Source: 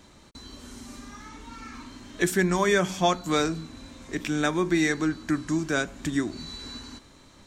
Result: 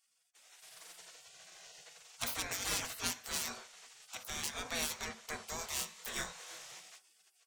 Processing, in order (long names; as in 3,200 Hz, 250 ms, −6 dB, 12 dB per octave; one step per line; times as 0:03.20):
stylus tracing distortion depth 0.089 ms
gate on every frequency bin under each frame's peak −25 dB weak
0:05.56–0:06.59: double-tracking delay 24 ms −3 dB
on a send at −10 dB: convolution reverb RT60 0.30 s, pre-delay 3 ms
on the sum: automatic gain control gain up to 9 dB
level −8.5 dB